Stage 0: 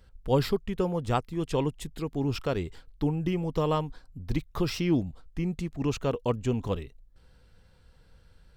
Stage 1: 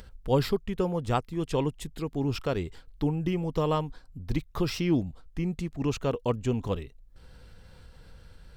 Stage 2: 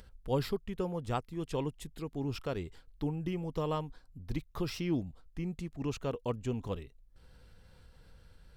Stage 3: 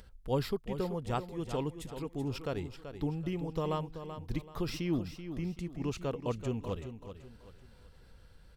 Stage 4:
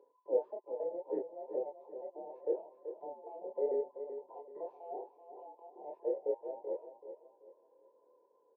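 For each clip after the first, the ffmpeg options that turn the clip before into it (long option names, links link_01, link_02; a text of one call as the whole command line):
ffmpeg -i in.wav -af "acompressor=mode=upward:threshold=-40dB:ratio=2.5" out.wav
ffmpeg -i in.wav -af "equalizer=frequency=11000:width=3.3:gain=4,volume=-7dB" out.wav
ffmpeg -i in.wav -af "aecho=1:1:382|764|1146|1528:0.316|0.108|0.0366|0.0124" out.wav
ffmpeg -i in.wav -filter_complex "[0:a]afftfilt=real='real(if(between(b,1,1008),(2*floor((b-1)/48)+1)*48-b,b),0)':imag='imag(if(between(b,1,1008),(2*floor((b-1)/48)+1)*48-b,b),0)*if(between(b,1,1008),-1,1)':win_size=2048:overlap=0.75,asuperpass=centerf=420:order=4:qfactor=2.9,asplit=2[link_01][link_02];[link_02]adelay=26,volume=-2dB[link_03];[link_01][link_03]amix=inputs=2:normalize=0,volume=5.5dB" out.wav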